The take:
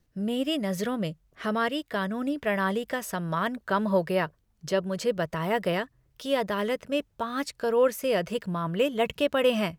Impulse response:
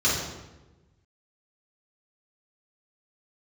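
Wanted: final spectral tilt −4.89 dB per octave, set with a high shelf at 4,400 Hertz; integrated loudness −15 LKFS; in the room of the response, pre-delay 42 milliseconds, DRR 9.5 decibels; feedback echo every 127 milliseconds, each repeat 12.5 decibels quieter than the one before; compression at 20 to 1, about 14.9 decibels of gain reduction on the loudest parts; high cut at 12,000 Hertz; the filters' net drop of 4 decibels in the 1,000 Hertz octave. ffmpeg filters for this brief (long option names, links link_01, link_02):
-filter_complex "[0:a]lowpass=12000,equalizer=frequency=1000:width_type=o:gain=-5.5,highshelf=frequency=4400:gain=3,acompressor=threshold=-34dB:ratio=20,aecho=1:1:127|254|381:0.237|0.0569|0.0137,asplit=2[link_01][link_02];[1:a]atrim=start_sample=2205,adelay=42[link_03];[link_02][link_03]afir=irnorm=-1:irlink=0,volume=-24.5dB[link_04];[link_01][link_04]amix=inputs=2:normalize=0,volume=23dB"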